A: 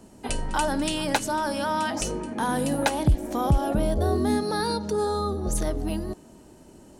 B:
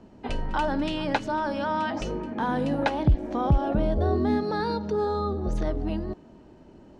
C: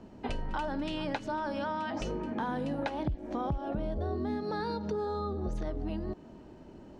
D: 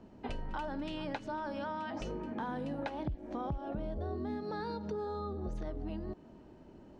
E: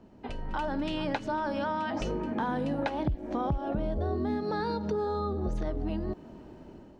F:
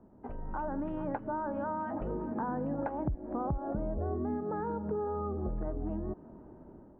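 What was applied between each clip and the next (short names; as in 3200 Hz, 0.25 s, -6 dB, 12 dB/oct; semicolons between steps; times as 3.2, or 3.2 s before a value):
air absorption 220 m
compressor 5:1, threshold -31 dBFS, peak gain reduction 14.5 dB
high shelf 5100 Hz -4 dB; gain -4.5 dB
AGC gain up to 7.5 dB
LPF 1400 Hz 24 dB/oct; gain -3.5 dB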